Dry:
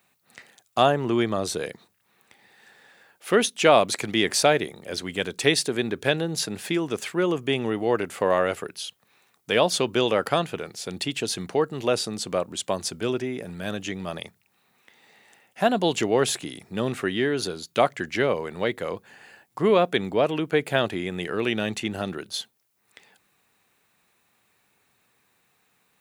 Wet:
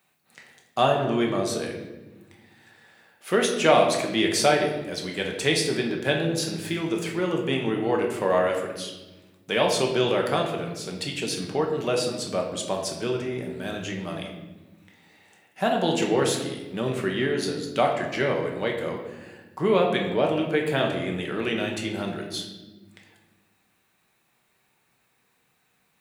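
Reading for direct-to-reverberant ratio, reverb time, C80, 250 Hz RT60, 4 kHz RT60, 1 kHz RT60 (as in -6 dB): 0.5 dB, 1.2 s, 7.5 dB, 2.0 s, 0.80 s, 0.95 s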